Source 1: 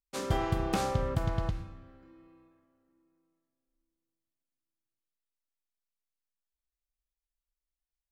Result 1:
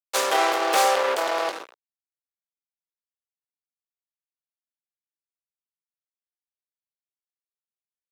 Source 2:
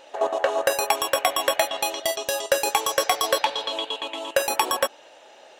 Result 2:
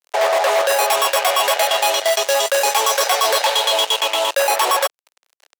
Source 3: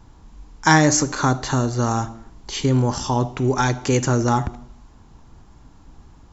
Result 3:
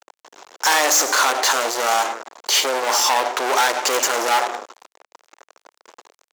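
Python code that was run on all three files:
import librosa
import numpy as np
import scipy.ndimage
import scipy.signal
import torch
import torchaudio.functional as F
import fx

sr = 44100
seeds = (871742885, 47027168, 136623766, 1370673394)

y = fx.fuzz(x, sr, gain_db=33.0, gate_db=-40.0)
y = scipy.signal.sosfilt(scipy.signal.butter(4, 480.0, 'highpass', fs=sr, output='sos'), y)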